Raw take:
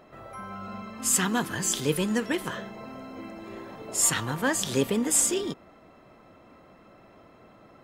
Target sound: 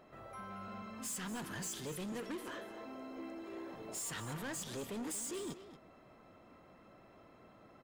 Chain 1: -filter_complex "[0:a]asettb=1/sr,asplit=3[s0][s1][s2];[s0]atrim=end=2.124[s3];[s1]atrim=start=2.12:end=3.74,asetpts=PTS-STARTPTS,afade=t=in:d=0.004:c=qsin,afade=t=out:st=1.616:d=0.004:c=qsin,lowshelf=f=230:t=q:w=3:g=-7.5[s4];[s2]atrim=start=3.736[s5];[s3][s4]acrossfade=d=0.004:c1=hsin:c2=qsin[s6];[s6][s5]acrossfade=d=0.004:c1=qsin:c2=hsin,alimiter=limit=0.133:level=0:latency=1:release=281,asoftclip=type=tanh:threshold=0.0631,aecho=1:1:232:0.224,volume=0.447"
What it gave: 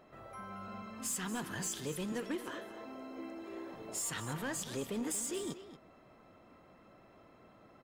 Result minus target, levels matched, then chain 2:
saturation: distortion -7 dB
-filter_complex "[0:a]asettb=1/sr,asplit=3[s0][s1][s2];[s0]atrim=end=2.124[s3];[s1]atrim=start=2.12:end=3.74,asetpts=PTS-STARTPTS,afade=t=in:d=0.004:c=qsin,afade=t=out:st=1.616:d=0.004:c=qsin,lowshelf=f=230:t=q:w=3:g=-7.5[s4];[s2]atrim=start=3.736[s5];[s3][s4]acrossfade=d=0.004:c1=hsin:c2=qsin[s6];[s6][s5]acrossfade=d=0.004:c1=qsin:c2=hsin,alimiter=limit=0.133:level=0:latency=1:release=281,asoftclip=type=tanh:threshold=0.0266,aecho=1:1:232:0.224,volume=0.447"

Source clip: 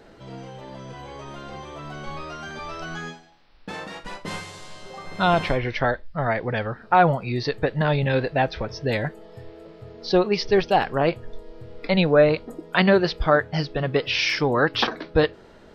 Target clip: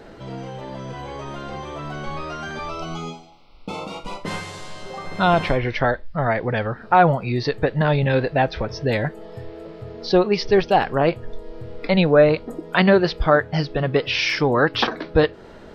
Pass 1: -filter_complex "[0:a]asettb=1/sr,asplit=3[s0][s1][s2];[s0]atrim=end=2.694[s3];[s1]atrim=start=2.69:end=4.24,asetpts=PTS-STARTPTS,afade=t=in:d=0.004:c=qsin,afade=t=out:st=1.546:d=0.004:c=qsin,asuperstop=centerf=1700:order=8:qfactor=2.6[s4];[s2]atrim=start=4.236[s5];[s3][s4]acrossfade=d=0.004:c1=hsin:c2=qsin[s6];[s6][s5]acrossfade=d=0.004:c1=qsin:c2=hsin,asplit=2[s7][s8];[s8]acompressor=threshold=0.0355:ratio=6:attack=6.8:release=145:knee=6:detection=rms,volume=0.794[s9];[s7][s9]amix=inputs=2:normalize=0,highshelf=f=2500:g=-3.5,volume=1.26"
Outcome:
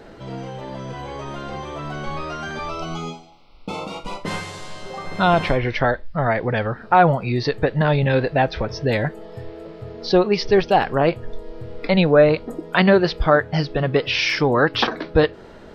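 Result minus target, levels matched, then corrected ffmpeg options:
compression: peak gain reduction -6 dB
-filter_complex "[0:a]asettb=1/sr,asplit=3[s0][s1][s2];[s0]atrim=end=2.694[s3];[s1]atrim=start=2.69:end=4.24,asetpts=PTS-STARTPTS,afade=t=in:d=0.004:c=qsin,afade=t=out:st=1.546:d=0.004:c=qsin,asuperstop=centerf=1700:order=8:qfactor=2.6[s4];[s2]atrim=start=4.236[s5];[s3][s4]acrossfade=d=0.004:c1=hsin:c2=qsin[s6];[s6][s5]acrossfade=d=0.004:c1=qsin:c2=hsin,asplit=2[s7][s8];[s8]acompressor=threshold=0.0158:ratio=6:attack=6.8:release=145:knee=6:detection=rms,volume=0.794[s9];[s7][s9]amix=inputs=2:normalize=0,highshelf=f=2500:g=-3.5,volume=1.26"

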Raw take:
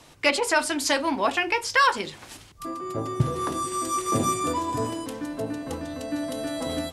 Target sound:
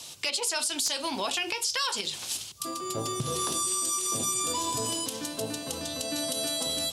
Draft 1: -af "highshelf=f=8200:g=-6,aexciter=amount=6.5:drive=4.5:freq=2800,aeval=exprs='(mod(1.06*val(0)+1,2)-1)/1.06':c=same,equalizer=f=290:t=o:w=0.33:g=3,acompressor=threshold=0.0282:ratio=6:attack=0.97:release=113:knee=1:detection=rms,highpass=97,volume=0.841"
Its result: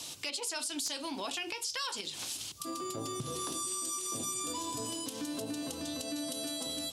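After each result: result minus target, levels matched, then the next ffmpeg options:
compression: peak gain reduction +7.5 dB; 250 Hz band +5.0 dB
-af "highshelf=f=8200:g=-6,aexciter=amount=6.5:drive=4.5:freq=2800,aeval=exprs='(mod(1.06*val(0)+1,2)-1)/1.06':c=same,equalizer=f=290:t=o:w=0.33:g=3,acompressor=threshold=0.0794:ratio=6:attack=0.97:release=113:knee=1:detection=rms,highpass=97,volume=0.841"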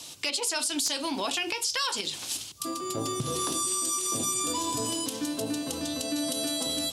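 250 Hz band +4.5 dB
-af "highshelf=f=8200:g=-6,aexciter=amount=6.5:drive=4.5:freq=2800,aeval=exprs='(mod(1.06*val(0)+1,2)-1)/1.06':c=same,equalizer=f=290:t=o:w=0.33:g=-5.5,acompressor=threshold=0.0794:ratio=6:attack=0.97:release=113:knee=1:detection=rms,highpass=97,volume=0.841"

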